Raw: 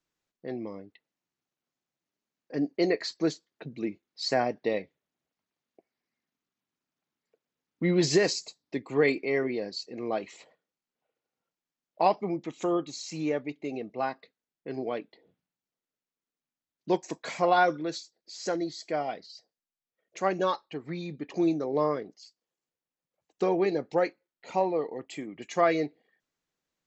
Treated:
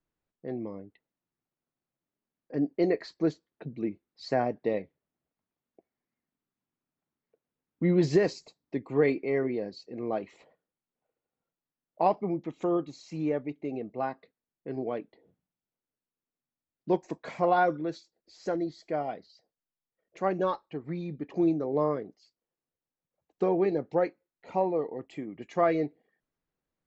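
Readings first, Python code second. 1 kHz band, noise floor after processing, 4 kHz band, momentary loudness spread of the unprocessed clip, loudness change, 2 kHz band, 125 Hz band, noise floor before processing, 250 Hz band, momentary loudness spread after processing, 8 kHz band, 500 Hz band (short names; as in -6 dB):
-1.5 dB, under -85 dBFS, -11.0 dB, 15 LU, -0.5 dB, -5.0 dB, +2.0 dB, under -85 dBFS, +0.5 dB, 14 LU, n/a, -0.5 dB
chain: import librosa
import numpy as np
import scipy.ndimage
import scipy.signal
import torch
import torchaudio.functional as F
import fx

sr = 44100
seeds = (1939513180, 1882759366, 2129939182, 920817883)

y = fx.lowpass(x, sr, hz=1200.0, slope=6)
y = fx.low_shelf(y, sr, hz=90.0, db=9.0)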